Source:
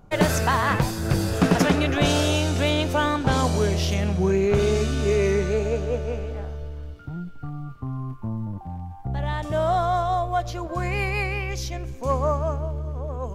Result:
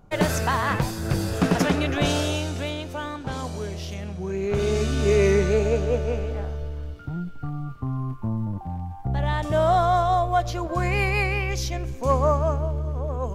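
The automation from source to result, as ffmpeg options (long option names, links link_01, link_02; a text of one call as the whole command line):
ffmpeg -i in.wav -af "volume=10dB,afade=type=out:start_time=2.08:duration=0.73:silence=0.421697,afade=type=in:start_time=4.26:duration=0.95:silence=0.251189" out.wav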